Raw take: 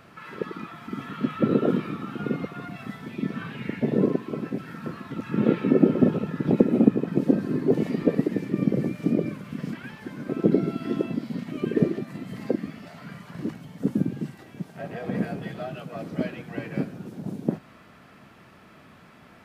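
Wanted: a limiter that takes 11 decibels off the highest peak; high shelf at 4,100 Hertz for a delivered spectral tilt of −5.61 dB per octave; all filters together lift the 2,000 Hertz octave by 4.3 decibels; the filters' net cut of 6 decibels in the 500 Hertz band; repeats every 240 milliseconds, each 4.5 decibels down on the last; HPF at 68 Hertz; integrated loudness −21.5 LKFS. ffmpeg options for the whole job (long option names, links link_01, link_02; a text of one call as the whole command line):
ffmpeg -i in.wav -af "highpass=68,equalizer=frequency=500:width_type=o:gain=-8.5,equalizer=frequency=2000:width_type=o:gain=4.5,highshelf=frequency=4100:gain=6,alimiter=limit=-15.5dB:level=0:latency=1,aecho=1:1:240|480|720|960|1200|1440|1680|1920|2160:0.596|0.357|0.214|0.129|0.0772|0.0463|0.0278|0.0167|0.01,volume=7.5dB" out.wav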